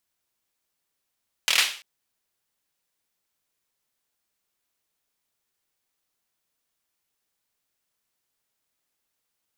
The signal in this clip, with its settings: hand clap length 0.34 s, bursts 5, apart 25 ms, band 2800 Hz, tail 0.41 s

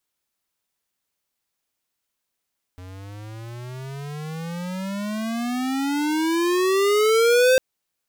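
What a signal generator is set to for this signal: gliding synth tone square, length 4.80 s, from 90 Hz, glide +30.5 st, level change +24 dB, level -15 dB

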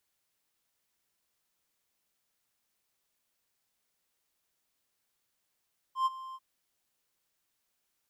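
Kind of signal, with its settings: ADSR triangle 1050 Hz, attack 0.109 s, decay 28 ms, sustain -17.5 dB, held 0.40 s, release 41 ms -21 dBFS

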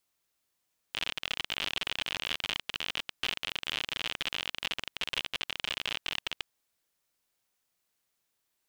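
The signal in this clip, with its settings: random clicks 59/s -16 dBFS 5.49 s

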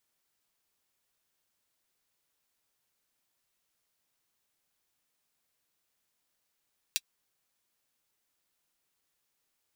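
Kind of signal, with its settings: closed hi-hat, high-pass 3100 Hz, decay 0.05 s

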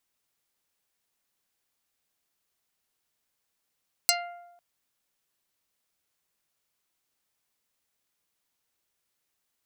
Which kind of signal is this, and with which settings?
plucked string F5, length 0.50 s, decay 1.00 s, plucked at 0.39, dark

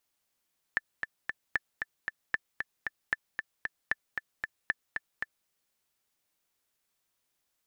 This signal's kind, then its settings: metronome 229 bpm, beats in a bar 3, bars 6, 1760 Hz, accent 5.5 dB -13.5 dBFS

